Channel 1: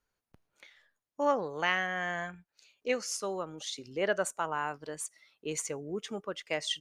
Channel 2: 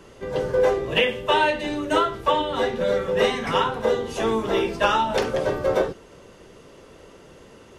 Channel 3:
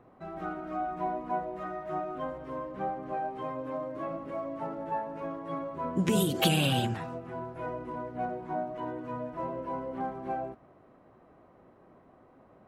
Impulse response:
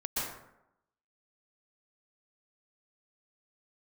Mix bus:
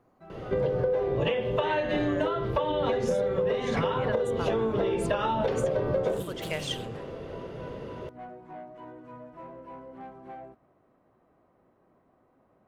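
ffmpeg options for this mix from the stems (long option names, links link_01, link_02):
-filter_complex "[0:a]aemphasis=mode=production:type=cd,volume=-0.5dB[link_01];[1:a]equalizer=frequency=125:width_type=o:width=1:gain=8,equalizer=frequency=500:width_type=o:width=1:gain=8,equalizer=frequency=4000:width_type=o:width=1:gain=4,equalizer=frequency=8000:width_type=o:width=1:gain=-9,adelay=300,volume=1dB[link_02];[2:a]asoftclip=type=tanh:threshold=-28dB,volume=-7.5dB[link_03];[link_01][link_02]amix=inputs=2:normalize=0,bass=frequency=250:gain=4,treble=frequency=4000:gain=-8,acompressor=threshold=-20dB:ratio=6,volume=0dB[link_04];[link_03][link_04]amix=inputs=2:normalize=0,acompressor=threshold=-23dB:ratio=6"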